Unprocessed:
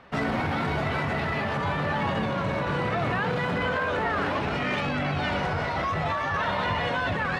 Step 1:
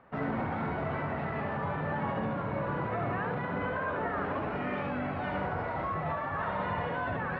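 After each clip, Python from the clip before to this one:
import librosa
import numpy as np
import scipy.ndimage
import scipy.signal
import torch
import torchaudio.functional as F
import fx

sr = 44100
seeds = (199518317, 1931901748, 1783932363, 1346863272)

y = scipy.signal.sosfilt(scipy.signal.butter(2, 1600.0, 'lowpass', fs=sr, output='sos'), x)
y = fx.low_shelf(y, sr, hz=63.0, db=-6.5)
y = y + 10.0 ** (-4.5 / 20.0) * np.pad(y, (int(72 * sr / 1000.0), 0))[:len(y)]
y = y * librosa.db_to_amplitude(-6.0)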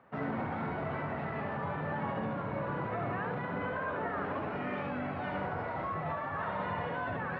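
y = scipy.signal.sosfilt(scipy.signal.butter(2, 79.0, 'highpass', fs=sr, output='sos'), x)
y = y * librosa.db_to_amplitude(-2.5)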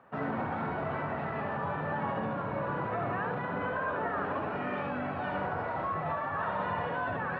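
y = fx.peak_eq(x, sr, hz=1100.0, db=3.5, octaves=2.7)
y = fx.notch(y, sr, hz=2100.0, q=11.0)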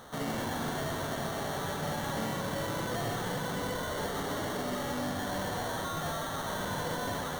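y = fx.delta_mod(x, sr, bps=16000, step_db=-44.0)
y = fx.sample_hold(y, sr, seeds[0], rate_hz=2500.0, jitter_pct=0)
y = y + 10.0 ** (-6.0 / 20.0) * np.pad(y, (int(125 * sr / 1000.0), 0))[:len(y)]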